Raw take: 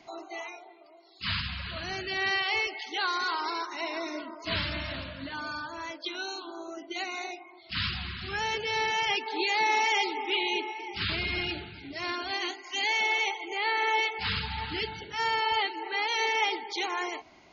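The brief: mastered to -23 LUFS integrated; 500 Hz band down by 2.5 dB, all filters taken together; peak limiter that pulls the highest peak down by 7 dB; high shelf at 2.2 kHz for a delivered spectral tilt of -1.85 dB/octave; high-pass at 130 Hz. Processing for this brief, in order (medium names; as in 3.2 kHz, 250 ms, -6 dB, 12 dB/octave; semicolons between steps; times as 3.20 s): high-pass 130 Hz; peaking EQ 500 Hz -3.5 dB; treble shelf 2.2 kHz +3 dB; trim +9 dB; peak limiter -13 dBFS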